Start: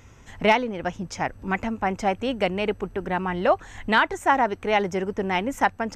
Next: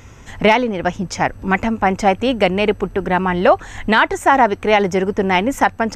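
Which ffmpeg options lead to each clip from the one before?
-af "alimiter=level_in=10dB:limit=-1dB:release=50:level=0:latency=1,volume=-1dB"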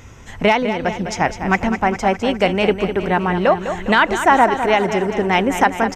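-filter_complex "[0:a]tremolo=f=0.71:d=0.28,asplit=2[a][b];[b]aecho=0:1:204|408|612|816|1020|1224|1428:0.335|0.198|0.117|0.0688|0.0406|0.0239|0.0141[c];[a][c]amix=inputs=2:normalize=0"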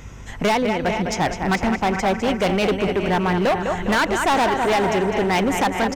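-af "aeval=exprs='val(0)+0.01*(sin(2*PI*50*n/s)+sin(2*PI*2*50*n/s)/2+sin(2*PI*3*50*n/s)/3+sin(2*PI*4*50*n/s)/4+sin(2*PI*5*50*n/s)/5)':c=same,aecho=1:1:449:0.237,volume=15.5dB,asoftclip=hard,volume=-15.5dB"

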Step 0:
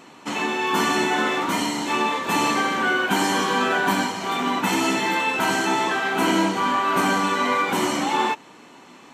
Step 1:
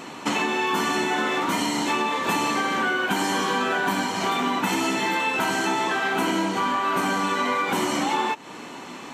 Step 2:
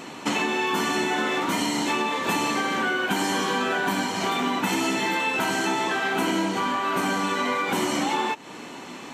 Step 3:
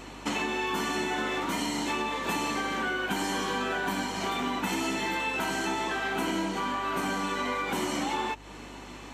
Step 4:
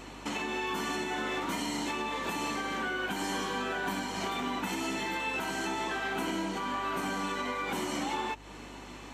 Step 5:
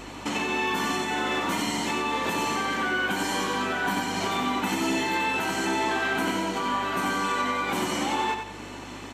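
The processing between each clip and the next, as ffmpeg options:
-af "acompressor=threshold=-30dB:ratio=6,volume=8.5dB"
-af "equalizer=f=1.1k:w=1.5:g=-2.5"
-af "aeval=exprs='val(0)+0.00631*(sin(2*PI*50*n/s)+sin(2*PI*2*50*n/s)/2+sin(2*PI*3*50*n/s)/3+sin(2*PI*4*50*n/s)/4+sin(2*PI*5*50*n/s)/5)':c=same,volume=-5.5dB"
-af "alimiter=limit=-21.5dB:level=0:latency=1:release=179,volume=-2dB"
-af "aecho=1:1:91|182|273|364:0.501|0.17|0.0579|0.0197,volume=5.5dB"

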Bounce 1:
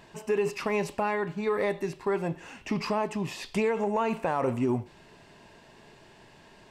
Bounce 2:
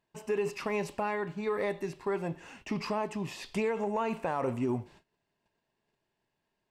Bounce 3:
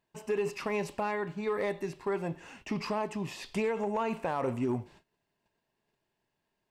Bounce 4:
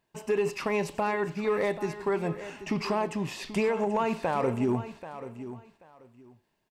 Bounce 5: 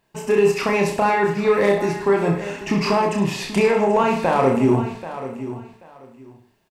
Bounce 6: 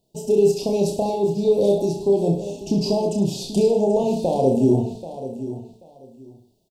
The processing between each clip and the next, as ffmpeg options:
-af "agate=range=-24dB:threshold=-49dB:ratio=16:detection=peak,volume=-4dB"
-af "asoftclip=type=hard:threshold=-23.5dB"
-af "aecho=1:1:784|1568:0.224|0.0448,volume=4dB"
-af "aecho=1:1:30|64.5|104.2|149.8|202.3:0.631|0.398|0.251|0.158|0.1,volume=8dB"
-af "asuperstop=centerf=1600:order=8:qfactor=0.57"

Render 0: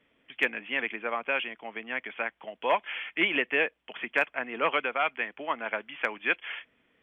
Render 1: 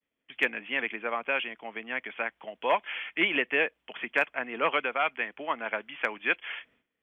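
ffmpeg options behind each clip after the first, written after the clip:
-af "agate=range=-33dB:threshold=-57dB:ratio=3:detection=peak"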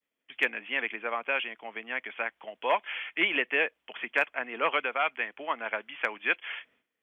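-af "lowshelf=f=200:g=-11"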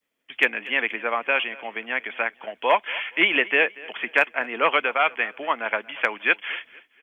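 -af "aecho=1:1:235|470|705:0.0891|0.0312|0.0109,volume=7dB"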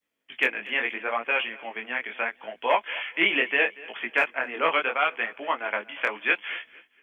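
-af "flanger=delay=17:depth=7.6:speed=0.75"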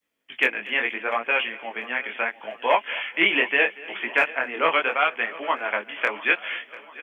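-af "aecho=1:1:694|1388|2082|2776:0.112|0.0583|0.0303|0.0158,volume=2.5dB"

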